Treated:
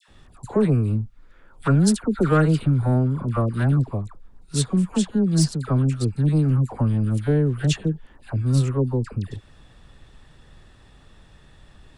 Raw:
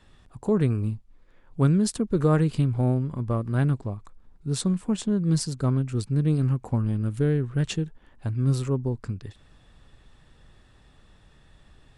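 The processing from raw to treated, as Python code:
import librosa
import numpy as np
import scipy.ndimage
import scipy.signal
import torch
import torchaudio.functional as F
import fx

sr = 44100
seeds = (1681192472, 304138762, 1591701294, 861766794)

y = fx.peak_eq(x, sr, hz=1400.0, db=9.5, octaves=0.27, at=(0.86, 3.37))
y = 10.0 ** (-15.0 / 20.0) * np.tanh(y / 10.0 ** (-15.0 / 20.0))
y = fx.dispersion(y, sr, late='lows', ms=84.0, hz=1200.0)
y = F.gain(torch.from_numpy(y), 5.0).numpy()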